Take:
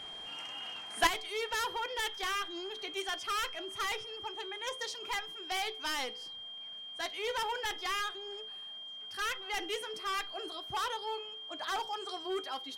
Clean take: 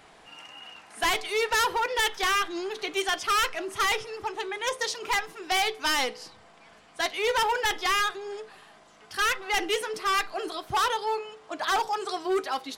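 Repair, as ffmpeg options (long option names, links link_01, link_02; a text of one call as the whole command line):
ffmpeg -i in.wav -af "bandreject=frequency=3200:width=30,asetnsamples=nb_out_samples=441:pad=0,asendcmd='1.07 volume volume 10dB',volume=0dB" out.wav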